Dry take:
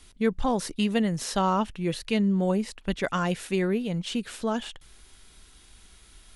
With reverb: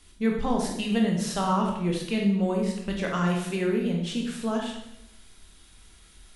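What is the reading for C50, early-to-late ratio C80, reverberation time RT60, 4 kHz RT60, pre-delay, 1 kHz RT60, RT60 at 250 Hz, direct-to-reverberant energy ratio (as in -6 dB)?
3.5 dB, 7.0 dB, 0.85 s, 0.70 s, 15 ms, 0.75 s, 1.0 s, 0.0 dB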